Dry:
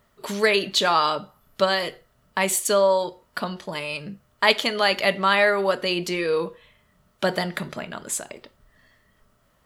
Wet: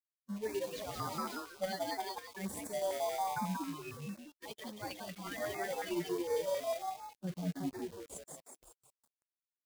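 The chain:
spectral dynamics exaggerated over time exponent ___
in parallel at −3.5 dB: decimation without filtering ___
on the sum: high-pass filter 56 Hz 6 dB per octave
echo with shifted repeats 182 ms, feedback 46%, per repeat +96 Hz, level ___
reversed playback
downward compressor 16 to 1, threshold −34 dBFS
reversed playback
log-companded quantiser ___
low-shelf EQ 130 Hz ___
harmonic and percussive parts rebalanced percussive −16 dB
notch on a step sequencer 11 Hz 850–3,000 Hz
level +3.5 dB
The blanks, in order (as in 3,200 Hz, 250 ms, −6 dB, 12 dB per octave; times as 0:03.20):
3, 33×, −5.5 dB, 4 bits, −2 dB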